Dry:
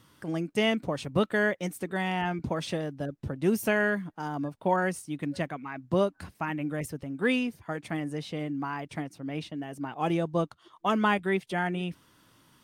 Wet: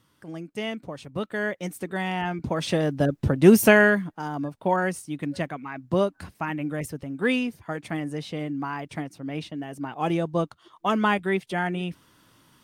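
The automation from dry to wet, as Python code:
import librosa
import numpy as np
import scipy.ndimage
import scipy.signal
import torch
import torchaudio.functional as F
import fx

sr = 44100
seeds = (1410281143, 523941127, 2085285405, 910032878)

y = fx.gain(x, sr, db=fx.line((1.15, -5.5), (1.73, 1.5), (2.41, 1.5), (2.97, 11.5), (3.64, 11.5), (4.24, 2.5)))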